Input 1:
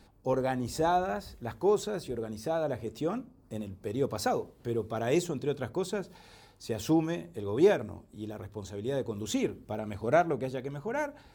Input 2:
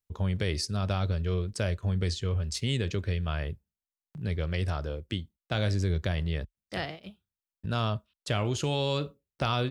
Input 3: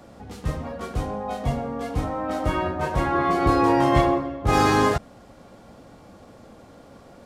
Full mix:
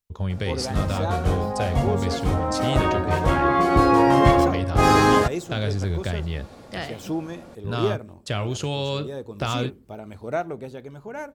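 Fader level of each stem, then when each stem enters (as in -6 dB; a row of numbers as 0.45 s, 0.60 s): -2.0 dB, +2.0 dB, +2.5 dB; 0.20 s, 0.00 s, 0.30 s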